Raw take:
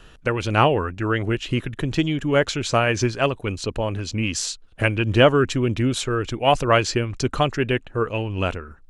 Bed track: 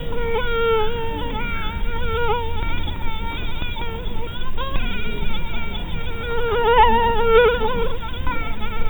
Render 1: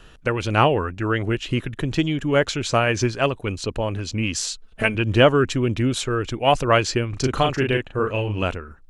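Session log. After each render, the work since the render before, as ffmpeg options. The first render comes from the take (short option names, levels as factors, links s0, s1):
-filter_complex "[0:a]asettb=1/sr,asplit=3[s0][s1][s2];[s0]atrim=end=4.514[s3];[s1]atrim=start=4.51:end=4.95,asetpts=PTS-STARTPTS,afade=t=in:d=0.004:c=qsin,afade=t=out:st=0.436:d=0.004:c=qsin,aecho=1:1:4.6:0.65,atrim=end_sample=19404[s4];[s2]atrim=start=4.946[s5];[s3][s4]acrossfade=d=0.004:c1=hsin:c2=qsin[s6];[s6][s5]acrossfade=d=0.004:c1=qsin:c2=hsin,asettb=1/sr,asplit=3[s7][s8][s9];[s7]atrim=end=7.094[s10];[s8]atrim=start=7.09:end=8.43,asetpts=PTS-STARTPTS,afade=t=in:d=0.004:c=qsin,afade=t=out:st=1.336:d=0.004:c=qsin,asplit=2[s11][s12];[s12]adelay=38,volume=0.631[s13];[s11][s13]amix=inputs=2:normalize=0,atrim=end_sample=59094[s14];[s9]atrim=start=8.426[s15];[s10][s14]acrossfade=d=0.004:c1=hsin:c2=qsin[s16];[s16][s15]acrossfade=d=0.004:c1=qsin:c2=hsin"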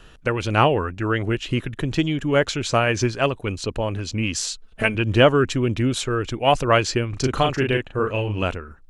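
-af anull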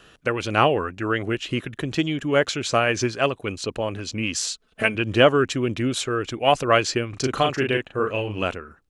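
-af "highpass=f=200:p=1,bandreject=f=920:w=12"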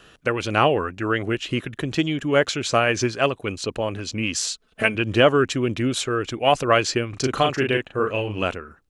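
-af "volume=1.12,alimiter=limit=0.708:level=0:latency=1"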